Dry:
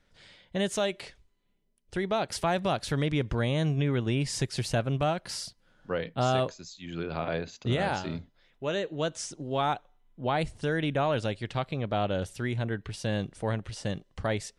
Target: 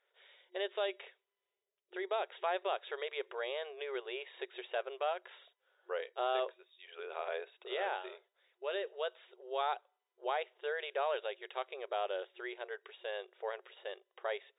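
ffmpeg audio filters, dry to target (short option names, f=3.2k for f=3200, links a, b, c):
-af "afftfilt=real='re*between(b*sr/4096,360,3800)':imag='im*between(b*sr/4096,360,3800)':win_size=4096:overlap=0.75,volume=-6.5dB"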